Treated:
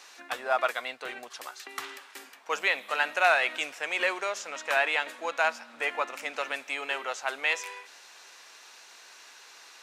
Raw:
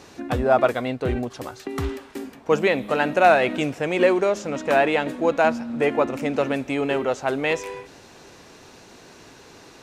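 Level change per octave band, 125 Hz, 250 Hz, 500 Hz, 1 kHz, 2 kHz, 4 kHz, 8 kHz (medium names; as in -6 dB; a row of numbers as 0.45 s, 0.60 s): under -35 dB, -24.0 dB, -13.5 dB, -7.0 dB, -1.0 dB, 0.0 dB, 0.0 dB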